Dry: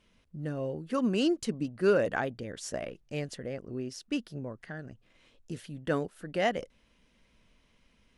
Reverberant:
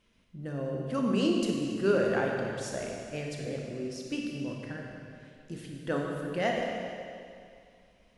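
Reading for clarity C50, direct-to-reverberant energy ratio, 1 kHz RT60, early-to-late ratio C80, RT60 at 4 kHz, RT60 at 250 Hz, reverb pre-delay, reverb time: 0.5 dB, -0.5 dB, 2.4 s, 2.0 dB, 2.2 s, 2.4 s, 27 ms, 2.4 s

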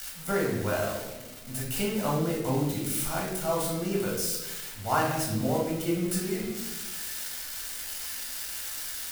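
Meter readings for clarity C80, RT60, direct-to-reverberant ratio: 6.0 dB, 1.1 s, -3.5 dB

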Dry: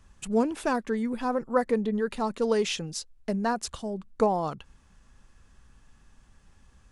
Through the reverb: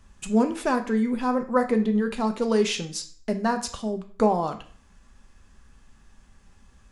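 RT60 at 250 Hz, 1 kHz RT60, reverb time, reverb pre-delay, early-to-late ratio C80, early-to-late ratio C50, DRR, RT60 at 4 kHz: 0.50 s, 0.50 s, 0.50 s, 3 ms, 17.0 dB, 12.0 dB, 5.5 dB, 0.40 s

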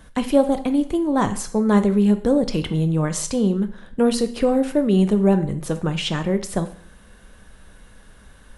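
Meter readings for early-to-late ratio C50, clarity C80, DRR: 14.0 dB, 17.5 dB, 9.0 dB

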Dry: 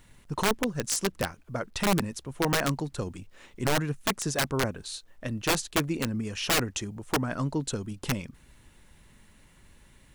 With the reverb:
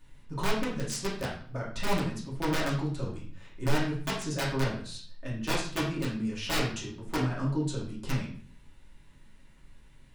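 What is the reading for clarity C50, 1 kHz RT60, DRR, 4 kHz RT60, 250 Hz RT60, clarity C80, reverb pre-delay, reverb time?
4.5 dB, 0.50 s, -6.0 dB, 0.45 s, 0.65 s, 9.5 dB, 3 ms, 0.45 s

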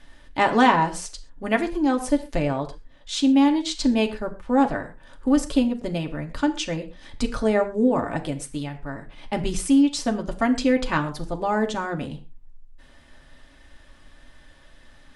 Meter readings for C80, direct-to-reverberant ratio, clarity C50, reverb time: 16.5 dB, 3.0 dB, 13.5 dB, not exponential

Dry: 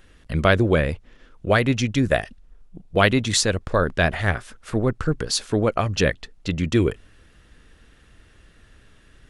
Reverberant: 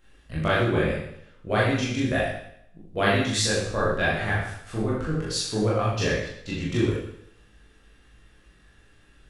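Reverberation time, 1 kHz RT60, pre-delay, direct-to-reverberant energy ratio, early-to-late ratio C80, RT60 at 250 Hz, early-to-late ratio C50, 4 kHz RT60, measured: 0.70 s, 0.70 s, 19 ms, -8.0 dB, 4.0 dB, 0.70 s, 1.0 dB, 0.70 s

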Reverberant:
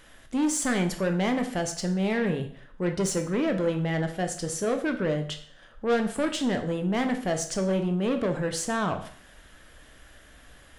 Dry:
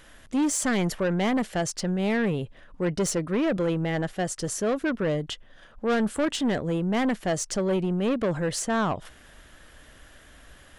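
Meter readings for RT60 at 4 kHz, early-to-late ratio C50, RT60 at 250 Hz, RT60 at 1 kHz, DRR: 0.50 s, 10.0 dB, 0.55 s, 0.50 s, 5.5 dB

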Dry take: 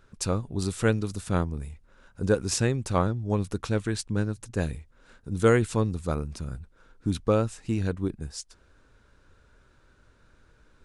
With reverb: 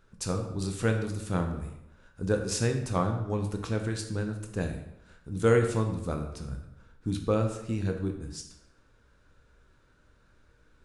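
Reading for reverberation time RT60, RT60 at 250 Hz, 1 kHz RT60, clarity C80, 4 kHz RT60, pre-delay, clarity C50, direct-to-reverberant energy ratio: 0.85 s, 0.85 s, 0.85 s, 9.5 dB, 0.65 s, 14 ms, 7.5 dB, 4.0 dB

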